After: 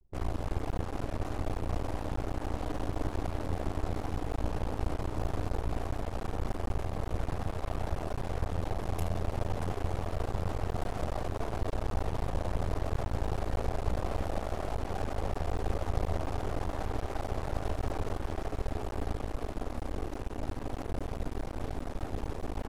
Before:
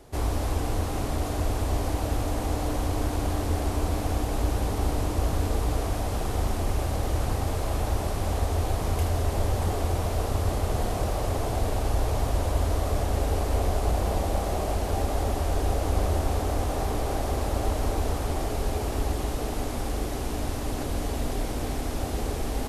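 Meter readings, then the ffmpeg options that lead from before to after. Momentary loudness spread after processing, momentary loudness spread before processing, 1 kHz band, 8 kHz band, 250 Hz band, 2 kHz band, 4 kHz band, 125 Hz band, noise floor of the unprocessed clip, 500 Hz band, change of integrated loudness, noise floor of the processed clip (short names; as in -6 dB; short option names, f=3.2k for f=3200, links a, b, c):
4 LU, 4 LU, -7.0 dB, -15.5 dB, -6.5 dB, -6.5 dB, -11.0 dB, -7.5 dB, -30 dBFS, -7.0 dB, -7.5 dB, -41 dBFS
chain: -af "anlmdn=6.31,aeval=exprs='max(val(0),0)':c=same,volume=-3dB"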